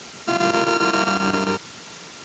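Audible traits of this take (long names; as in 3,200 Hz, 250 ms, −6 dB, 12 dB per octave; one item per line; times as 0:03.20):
a buzz of ramps at a fixed pitch in blocks of 32 samples
chopped level 7.5 Hz, depth 65%, duty 80%
a quantiser's noise floor 6 bits, dither triangular
Speex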